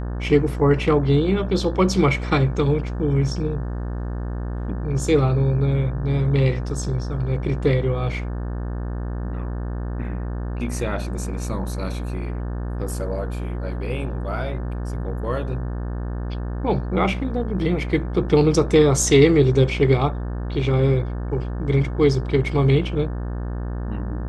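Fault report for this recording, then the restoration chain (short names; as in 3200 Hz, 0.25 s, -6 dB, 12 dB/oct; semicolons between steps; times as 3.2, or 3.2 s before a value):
buzz 60 Hz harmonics 30 -27 dBFS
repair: de-hum 60 Hz, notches 30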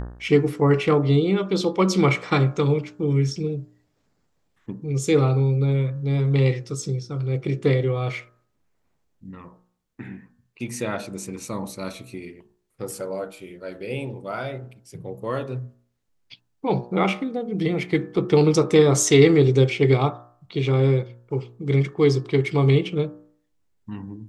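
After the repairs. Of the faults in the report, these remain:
none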